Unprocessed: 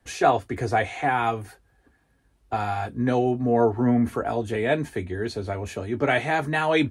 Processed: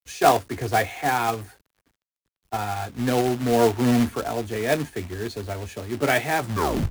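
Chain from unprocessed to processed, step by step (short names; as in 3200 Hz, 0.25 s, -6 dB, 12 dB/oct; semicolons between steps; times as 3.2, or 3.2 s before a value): tape stop at the end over 0.53 s; companded quantiser 4-bit; three-band expander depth 40%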